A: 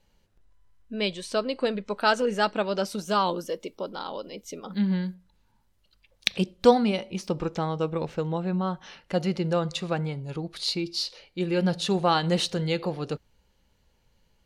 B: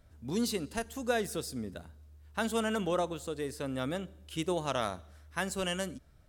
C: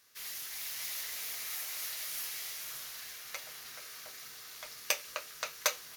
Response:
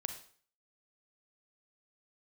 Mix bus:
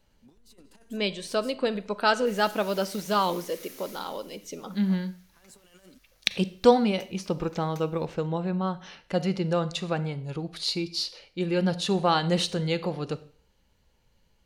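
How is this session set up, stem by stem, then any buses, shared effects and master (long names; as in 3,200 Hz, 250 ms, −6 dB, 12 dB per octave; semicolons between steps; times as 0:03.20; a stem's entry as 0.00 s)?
−4.0 dB, 0.00 s, send −4.5 dB, no processing
−14.5 dB, 0.00 s, no send, compressor whose output falls as the input rises −39 dBFS, ratio −0.5; high-pass filter 210 Hz
0:03.88 −11 dB → 0:04.29 −24 dB, 2.10 s, send −6 dB, no processing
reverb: on, RT60 0.50 s, pre-delay 32 ms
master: no processing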